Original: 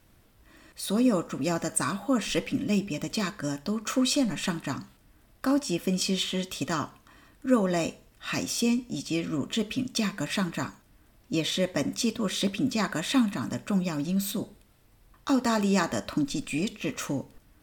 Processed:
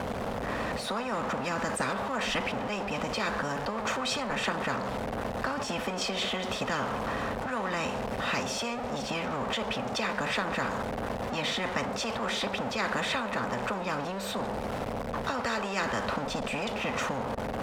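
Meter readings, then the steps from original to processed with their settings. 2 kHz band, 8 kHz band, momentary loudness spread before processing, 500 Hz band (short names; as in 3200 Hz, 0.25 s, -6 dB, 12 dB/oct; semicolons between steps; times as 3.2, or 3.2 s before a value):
+4.0 dB, -6.5 dB, 9 LU, 0.0 dB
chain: zero-crossing step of -32 dBFS; double band-pass 340 Hz, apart 1.2 oct; spectral compressor 10:1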